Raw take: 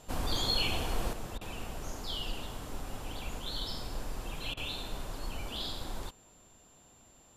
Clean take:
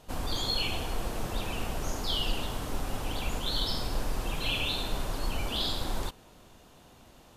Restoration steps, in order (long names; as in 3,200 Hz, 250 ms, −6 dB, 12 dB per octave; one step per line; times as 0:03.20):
notch filter 7,300 Hz, Q 30
repair the gap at 0:01.38/0:04.54, 30 ms
level 0 dB, from 0:01.13 +7 dB